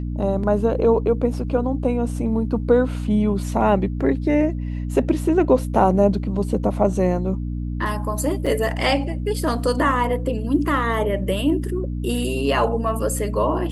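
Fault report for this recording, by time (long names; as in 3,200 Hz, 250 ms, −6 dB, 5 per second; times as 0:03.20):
mains hum 60 Hz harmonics 5 −26 dBFS
0:08.46–0:08.47: drop-out 5.2 ms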